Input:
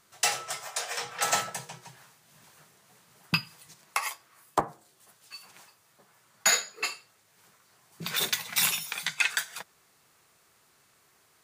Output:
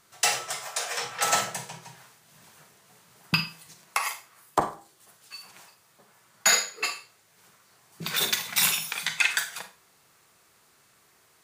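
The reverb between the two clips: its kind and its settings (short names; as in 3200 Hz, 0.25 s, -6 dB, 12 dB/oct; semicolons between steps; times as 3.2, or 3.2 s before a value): Schroeder reverb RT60 0.34 s, combs from 33 ms, DRR 8 dB; gain +2 dB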